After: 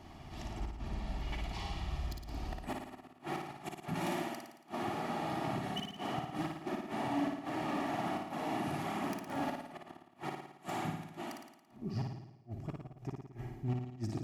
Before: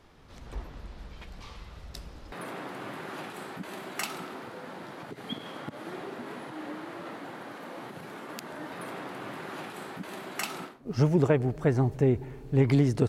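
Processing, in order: phaser 1.2 Hz, delay 3.4 ms, feedback 23%; reverse; compression 16:1, threshold -35 dBFS, peak gain reduction 19.5 dB; reverse; inverted gate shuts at -30 dBFS, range -40 dB; wavefolder -34.5 dBFS; graphic EQ with 31 bands 500 Hz -9 dB, 800 Hz +4 dB, 1.6 kHz -9 dB, 10 kHz -5 dB; speed mistake 48 kHz file played as 44.1 kHz; peaking EQ 3.8 kHz -4.5 dB 0.28 oct; comb of notches 520 Hz; on a send: flutter echo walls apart 9.6 m, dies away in 0.82 s; on the sum: trim +5.5 dB

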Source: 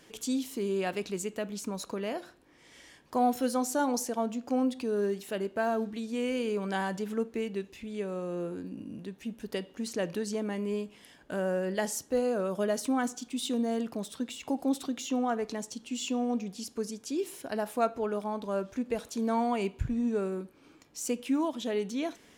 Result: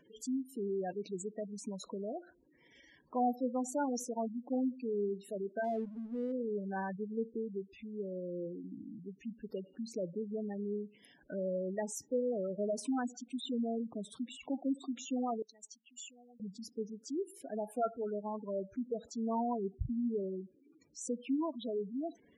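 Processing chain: spectral gate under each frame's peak -10 dB strong; 5.64–6.32 s: hysteresis with a dead band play -47 dBFS; 15.42–16.40 s: pre-emphasis filter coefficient 0.97; trim -5 dB

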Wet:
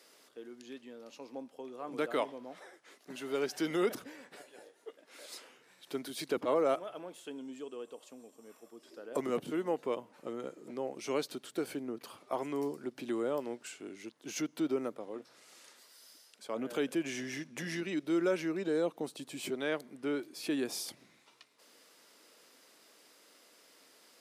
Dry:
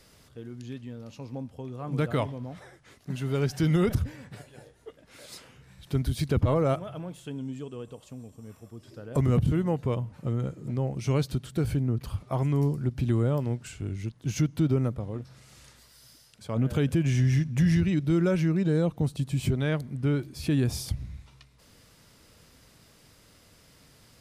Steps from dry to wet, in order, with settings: high-pass 300 Hz 24 dB/octave; trim -2.5 dB

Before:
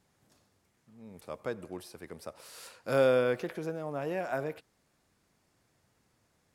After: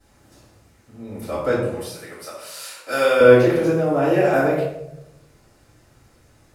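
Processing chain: 1.71–3.20 s: high-pass 1.5 kHz 6 dB/octave; reverberation RT60 0.85 s, pre-delay 3 ms, DRR -15 dB; trim -2 dB

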